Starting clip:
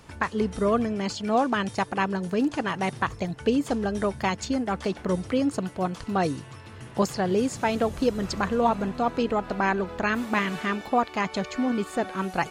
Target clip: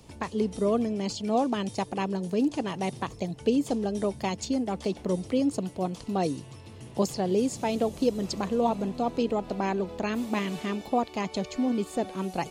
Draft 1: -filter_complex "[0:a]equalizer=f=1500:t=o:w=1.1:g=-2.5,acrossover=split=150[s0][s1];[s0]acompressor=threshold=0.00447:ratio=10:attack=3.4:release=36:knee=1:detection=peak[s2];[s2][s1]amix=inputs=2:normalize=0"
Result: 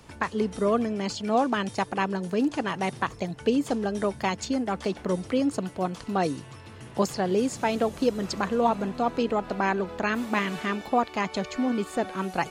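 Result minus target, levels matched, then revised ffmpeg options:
2 kHz band +6.5 dB
-filter_complex "[0:a]equalizer=f=1500:t=o:w=1.1:g=-14,acrossover=split=150[s0][s1];[s0]acompressor=threshold=0.00447:ratio=10:attack=3.4:release=36:knee=1:detection=peak[s2];[s2][s1]amix=inputs=2:normalize=0"

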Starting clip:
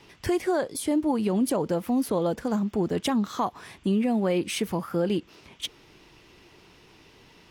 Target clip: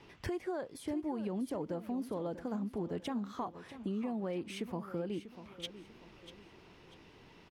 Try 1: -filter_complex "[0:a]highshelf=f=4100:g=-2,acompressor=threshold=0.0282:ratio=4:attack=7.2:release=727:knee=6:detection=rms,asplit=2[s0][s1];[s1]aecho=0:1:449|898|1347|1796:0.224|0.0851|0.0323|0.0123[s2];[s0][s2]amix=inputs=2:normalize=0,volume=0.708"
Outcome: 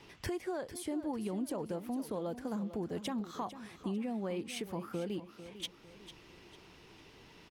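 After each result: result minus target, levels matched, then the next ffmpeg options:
8 kHz band +6.5 dB; echo 193 ms early
-filter_complex "[0:a]highshelf=f=4100:g=-11,acompressor=threshold=0.0282:ratio=4:attack=7.2:release=727:knee=6:detection=rms,asplit=2[s0][s1];[s1]aecho=0:1:449|898|1347|1796:0.224|0.0851|0.0323|0.0123[s2];[s0][s2]amix=inputs=2:normalize=0,volume=0.708"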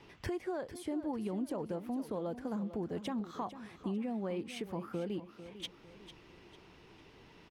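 echo 193 ms early
-filter_complex "[0:a]highshelf=f=4100:g=-11,acompressor=threshold=0.0282:ratio=4:attack=7.2:release=727:knee=6:detection=rms,asplit=2[s0][s1];[s1]aecho=0:1:642|1284|1926|2568:0.224|0.0851|0.0323|0.0123[s2];[s0][s2]amix=inputs=2:normalize=0,volume=0.708"

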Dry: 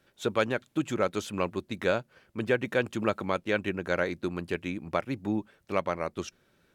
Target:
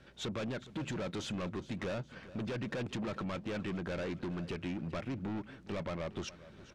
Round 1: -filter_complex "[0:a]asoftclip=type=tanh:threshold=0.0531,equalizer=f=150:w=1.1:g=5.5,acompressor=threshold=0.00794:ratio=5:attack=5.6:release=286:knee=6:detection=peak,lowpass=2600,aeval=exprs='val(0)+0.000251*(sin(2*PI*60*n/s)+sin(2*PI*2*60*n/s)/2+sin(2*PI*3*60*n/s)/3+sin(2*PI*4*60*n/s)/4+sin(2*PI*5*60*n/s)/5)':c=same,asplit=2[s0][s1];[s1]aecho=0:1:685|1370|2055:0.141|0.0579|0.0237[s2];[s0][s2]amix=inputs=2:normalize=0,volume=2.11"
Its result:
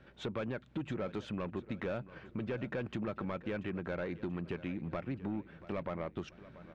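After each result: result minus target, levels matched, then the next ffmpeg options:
echo 271 ms late; 4 kHz band -7.0 dB; saturation: distortion -6 dB
-filter_complex "[0:a]asoftclip=type=tanh:threshold=0.0531,equalizer=f=150:w=1.1:g=5.5,acompressor=threshold=0.00794:ratio=5:attack=5.6:release=286:knee=6:detection=peak,lowpass=2600,aeval=exprs='val(0)+0.000251*(sin(2*PI*60*n/s)+sin(2*PI*2*60*n/s)/2+sin(2*PI*3*60*n/s)/3+sin(2*PI*4*60*n/s)/4+sin(2*PI*5*60*n/s)/5)':c=same,asplit=2[s0][s1];[s1]aecho=0:1:414|828|1242:0.141|0.0579|0.0237[s2];[s0][s2]amix=inputs=2:normalize=0,volume=2.11"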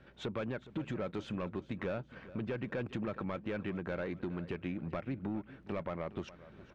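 4 kHz band -7.0 dB; saturation: distortion -6 dB
-filter_complex "[0:a]asoftclip=type=tanh:threshold=0.0531,equalizer=f=150:w=1.1:g=5.5,acompressor=threshold=0.00794:ratio=5:attack=5.6:release=286:knee=6:detection=peak,lowpass=5600,aeval=exprs='val(0)+0.000251*(sin(2*PI*60*n/s)+sin(2*PI*2*60*n/s)/2+sin(2*PI*3*60*n/s)/3+sin(2*PI*4*60*n/s)/4+sin(2*PI*5*60*n/s)/5)':c=same,asplit=2[s0][s1];[s1]aecho=0:1:414|828|1242:0.141|0.0579|0.0237[s2];[s0][s2]amix=inputs=2:normalize=0,volume=2.11"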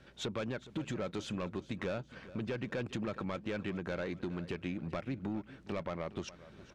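saturation: distortion -6 dB
-filter_complex "[0:a]asoftclip=type=tanh:threshold=0.015,equalizer=f=150:w=1.1:g=5.5,acompressor=threshold=0.00794:ratio=5:attack=5.6:release=286:knee=6:detection=peak,lowpass=5600,aeval=exprs='val(0)+0.000251*(sin(2*PI*60*n/s)+sin(2*PI*2*60*n/s)/2+sin(2*PI*3*60*n/s)/3+sin(2*PI*4*60*n/s)/4+sin(2*PI*5*60*n/s)/5)':c=same,asplit=2[s0][s1];[s1]aecho=0:1:414|828|1242:0.141|0.0579|0.0237[s2];[s0][s2]amix=inputs=2:normalize=0,volume=2.11"

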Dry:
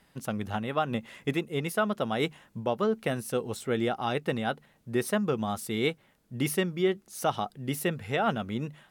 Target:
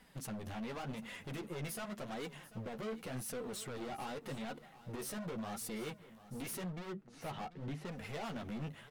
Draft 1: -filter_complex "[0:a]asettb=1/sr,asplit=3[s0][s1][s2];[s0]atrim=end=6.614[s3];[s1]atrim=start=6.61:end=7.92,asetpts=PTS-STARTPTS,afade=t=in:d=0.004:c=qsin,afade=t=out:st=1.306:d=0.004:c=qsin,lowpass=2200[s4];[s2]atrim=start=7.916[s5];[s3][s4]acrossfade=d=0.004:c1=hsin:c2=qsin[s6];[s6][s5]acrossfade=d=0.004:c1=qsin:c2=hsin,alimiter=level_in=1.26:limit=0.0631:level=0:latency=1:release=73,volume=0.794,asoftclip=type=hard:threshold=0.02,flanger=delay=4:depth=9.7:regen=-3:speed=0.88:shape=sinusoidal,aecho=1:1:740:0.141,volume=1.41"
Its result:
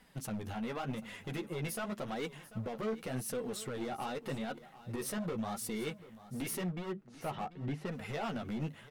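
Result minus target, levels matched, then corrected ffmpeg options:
hard clipper: distortion -5 dB
-filter_complex "[0:a]asettb=1/sr,asplit=3[s0][s1][s2];[s0]atrim=end=6.614[s3];[s1]atrim=start=6.61:end=7.92,asetpts=PTS-STARTPTS,afade=t=in:d=0.004:c=qsin,afade=t=out:st=1.306:d=0.004:c=qsin,lowpass=2200[s4];[s2]atrim=start=7.916[s5];[s3][s4]acrossfade=d=0.004:c1=hsin:c2=qsin[s6];[s6][s5]acrossfade=d=0.004:c1=qsin:c2=hsin,alimiter=level_in=1.26:limit=0.0631:level=0:latency=1:release=73,volume=0.794,asoftclip=type=hard:threshold=0.00944,flanger=delay=4:depth=9.7:regen=-3:speed=0.88:shape=sinusoidal,aecho=1:1:740:0.141,volume=1.41"

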